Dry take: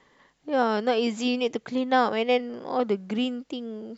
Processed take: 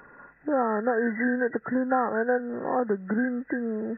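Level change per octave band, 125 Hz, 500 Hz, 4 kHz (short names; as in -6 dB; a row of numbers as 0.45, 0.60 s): n/a, -1.0 dB, under -40 dB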